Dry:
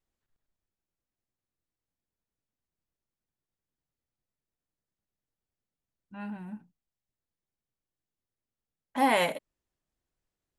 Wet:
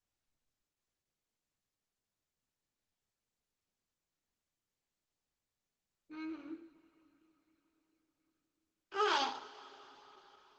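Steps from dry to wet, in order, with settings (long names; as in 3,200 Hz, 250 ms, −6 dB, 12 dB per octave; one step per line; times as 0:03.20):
pitch shifter +7.5 semitones
coupled-rooms reverb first 0.47 s, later 5 s, from −22 dB, DRR 3.5 dB
level −8 dB
Opus 12 kbit/s 48,000 Hz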